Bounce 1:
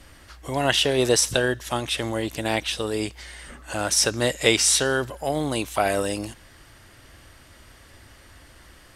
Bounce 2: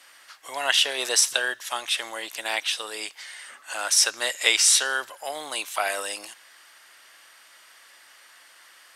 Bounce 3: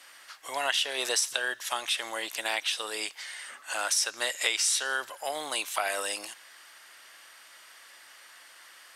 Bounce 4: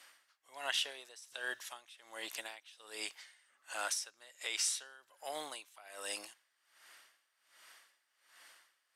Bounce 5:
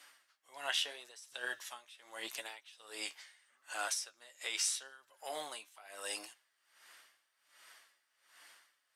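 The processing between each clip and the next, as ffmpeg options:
ffmpeg -i in.wav -af "highpass=1000,volume=1.5dB" out.wav
ffmpeg -i in.wav -af "acompressor=threshold=-26dB:ratio=3" out.wav
ffmpeg -i in.wav -af "aeval=exprs='val(0)*pow(10,-22*(0.5-0.5*cos(2*PI*1.3*n/s))/20)':channel_layout=same,volume=-6.5dB" out.wav
ffmpeg -i in.wav -af "flanger=delay=6.7:depth=6.7:regen=43:speed=0.8:shape=sinusoidal,volume=4dB" out.wav

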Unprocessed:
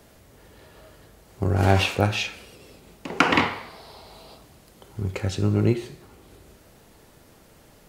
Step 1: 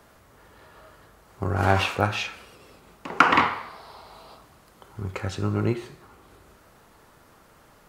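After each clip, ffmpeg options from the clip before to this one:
ffmpeg -i in.wav -af "equalizer=frequency=1200:width_type=o:width=1.2:gain=10.5,volume=-4.5dB" out.wav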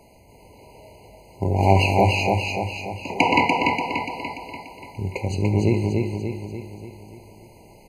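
ffmpeg -i in.wav -filter_complex "[0:a]asplit=2[link_01][link_02];[link_02]aecho=0:1:291|582|873|1164|1455|1746|2037:0.708|0.382|0.206|0.111|0.0602|0.0325|0.0176[link_03];[link_01][link_03]amix=inputs=2:normalize=0,afftfilt=real='re*eq(mod(floor(b*sr/1024/1000),2),0)':imag='im*eq(mod(floor(b*sr/1024/1000),2),0)':win_size=1024:overlap=0.75,volume=4.5dB" out.wav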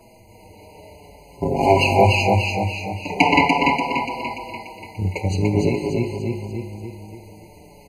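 ffmpeg -i in.wav -filter_complex "[0:a]asplit=2[link_01][link_02];[link_02]adelay=5.8,afreqshift=-0.45[link_03];[link_01][link_03]amix=inputs=2:normalize=1,volume=6dB" out.wav

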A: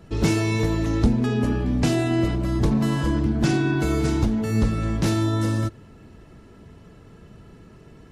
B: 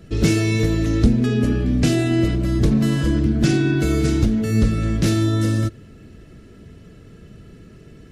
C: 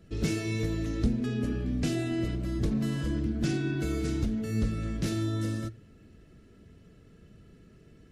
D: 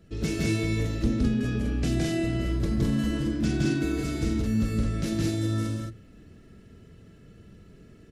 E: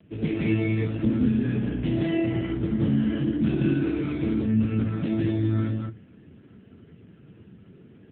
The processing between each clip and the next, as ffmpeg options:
ffmpeg -i in.wav -af "equalizer=frequency=920:width=2.1:gain=-13.5,volume=4dB" out.wav
ffmpeg -i in.wav -af "flanger=delay=3.5:depth=1.3:regen=-88:speed=1.5:shape=triangular,volume=-7dB" out.wav
ffmpeg -i in.wav -af "aecho=1:1:166.2|212.8:0.891|0.794" out.wav
ffmpeg -i in.wav -af "volume=4dB" -ar 8000 -c:a libopencore_amrnb -b:a 5900 out.amr

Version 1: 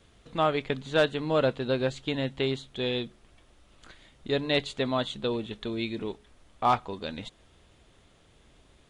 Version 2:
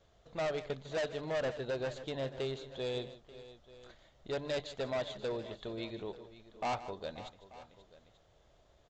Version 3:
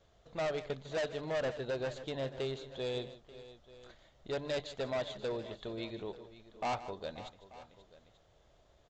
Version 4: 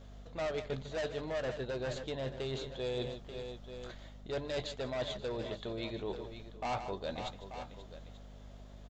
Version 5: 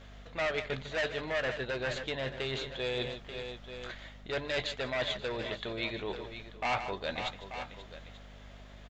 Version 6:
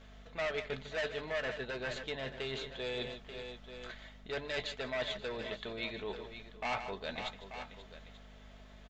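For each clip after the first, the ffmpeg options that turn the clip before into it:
ffmpeg -i in.wav -af "equalizer=frequency=250:width_type=o:width=0.67:gain=-7,equalizer=frequency=630:width_type=o:width=0.67:gain=9,equalizer=frequency=2500:width_type=o:width=0.67:gain=-5,aresample=16000,volume=23.5dB,asoftclip=hard,volume=-23.5dB,aresample=44100,aecho=1:1:153|533|886:0.178|0.158|0.106,volume=-8dB" out.wav
ffmpeg -i in.wav -af anull out.wav
ffmpeg -i in.wav -filter_complex "[0:a]areverse,acompressor=threshold=-43dB:ratio=6,areverse,aeval=exprs='val(0)+0.00126*(sin(2*PI*50*n/s)+sin(2*PI*2*50*n/s)/2+sin(2*PI*3*50*n/s)/3+sin(2*PI*4*50*n/s)/4+sin(2*PI*5*50*n/s)/5)':channel_layout=same,asplit=2[link_01][link_02];[link_02]adelay=16,volume=-13dB[link_03];[link_01][link_03]amix=inputs=2:normalize=0,volume=7.5dB" out.wav
ffmpeg -i in.wav -af "equalizer=frequency=2100:width_type=o:width=1.8:gain=12" out.wav
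ffmpeg -i in.wav -af "aecho=1:1:4.6:0.33,volume=-4.5dB" out.wav

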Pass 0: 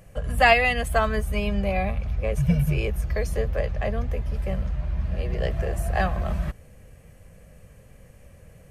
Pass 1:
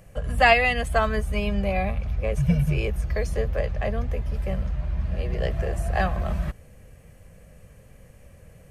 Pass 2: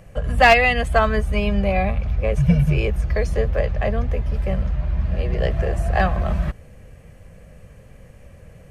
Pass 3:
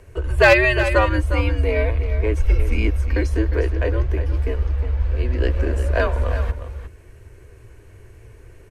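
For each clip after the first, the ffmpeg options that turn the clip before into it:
ffmpeg -i in.wav -filter_complex "[0:a]acrossover=split=10000[link_01][link_02];[link_02]acompressor=threshold=-58dB:ratio=4:attack=1:release=60[link_03];[link_01][link_03]amix=inputs=2:normalize=0" out.wav
ffmpeg -i in.wav -af "highshelf=frequency=7600:gain=-10,aeval=exprs='clip(val(0),-1,0.266)':channel_layout=same,volume=5dB" out.wav
ffmpeg -i in.wav -af "afreqshift=-120,aecho=1:1:357:0.299" out.wav

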